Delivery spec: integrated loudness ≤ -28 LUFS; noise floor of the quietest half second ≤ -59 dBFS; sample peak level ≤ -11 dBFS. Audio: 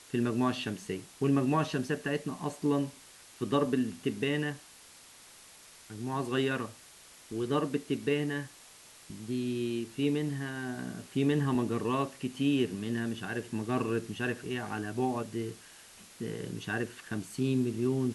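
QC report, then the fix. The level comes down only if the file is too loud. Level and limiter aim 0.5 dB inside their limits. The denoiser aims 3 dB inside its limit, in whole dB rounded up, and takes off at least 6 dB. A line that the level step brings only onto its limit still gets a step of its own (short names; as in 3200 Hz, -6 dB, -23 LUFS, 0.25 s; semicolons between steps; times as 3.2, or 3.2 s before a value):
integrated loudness -32.5 LUFS: OK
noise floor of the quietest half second -55 dBFS: fail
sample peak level -15.5 dBFS: OK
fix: denoiser 7 dB, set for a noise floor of -55 dBFS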